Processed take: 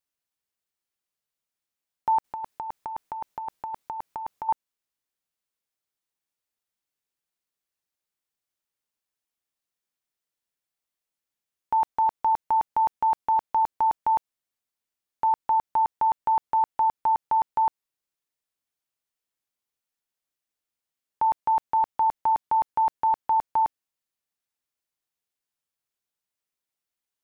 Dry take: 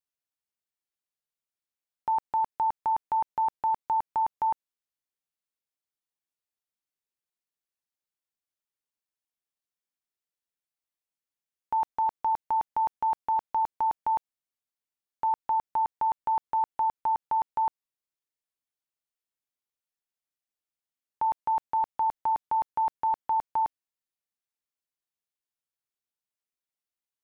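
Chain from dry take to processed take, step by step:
0:02.24–0:04.49: compressor whose output falls as the input rises −33 dBFS, ratio −0.5
level +4 dB

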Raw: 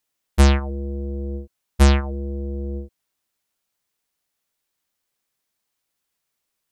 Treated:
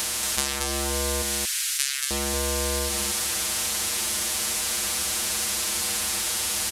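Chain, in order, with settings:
compressor on every frequency bin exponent 0.2
0:01.22–0:02.11: Butterworth high-pass 1,500 Hz 36 dB per octave
spectral tilt +4.5 dB per octave
downward compressor 4 to 1, threshold −22 dBFS, peak gain reduction 12.5 dB
on a send: single-tap delay 229 ms −4.5 dB
on the sum: level −1 dB

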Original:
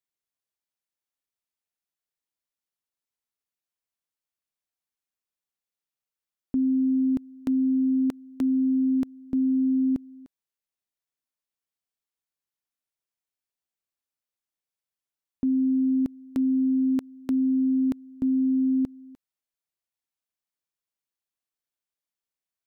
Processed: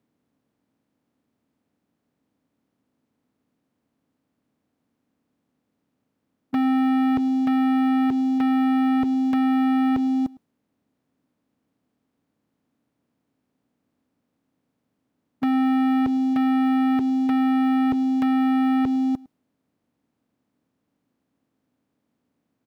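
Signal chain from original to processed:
compressor on every frequency bin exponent 0.6
high-pass filter 110 Hz 12 dB per octave
low-shelf EQ 470 Hz +9.5 dB
notch filter 370 Hz, Q 12
leveller curve on the samples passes 3
downward compressor, threshold −16 dBFS, peak gain reduction 4 dB
soft clipping −18.5 dBFS, distortion −19 dB
single-tap delay 107 ms −22.5 dB
one half of a high-frequency compander decoder only

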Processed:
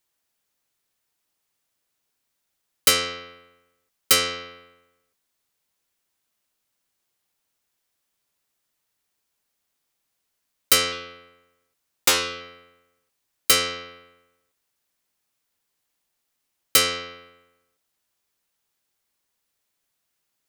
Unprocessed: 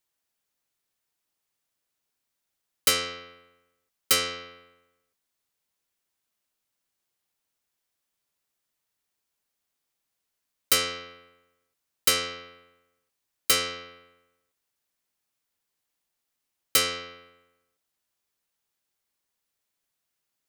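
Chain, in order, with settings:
0:10.92–0:12.41: highs frequency-modulated by the lows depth 0.57 ms
level +4.5 dB

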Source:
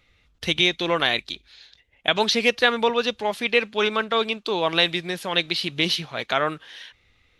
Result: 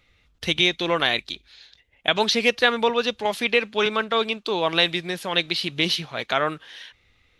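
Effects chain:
0:03.25–0:03.86: multiband upward and downward compressor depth 40%

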